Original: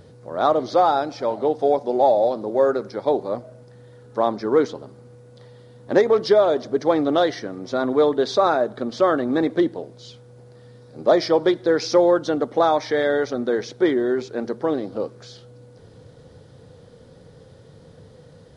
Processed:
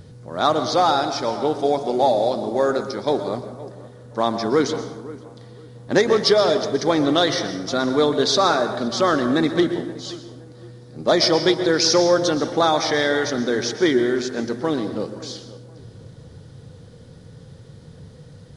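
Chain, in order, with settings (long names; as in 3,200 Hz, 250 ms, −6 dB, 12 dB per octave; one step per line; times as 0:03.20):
drawn EQ curve 160 Hz 0 dB, 540 Hz −9 dB, 6,400 Hz +7 dB
tape delay 521 ms, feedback 32%, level −16 dB, low-pass 2,000 Hz
dense smooth reverb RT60 1 s, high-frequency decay 0.7×, pre-delay 105 ms, DRR 9 dB
one half of a high-frequency compander decoder only
level +6 dB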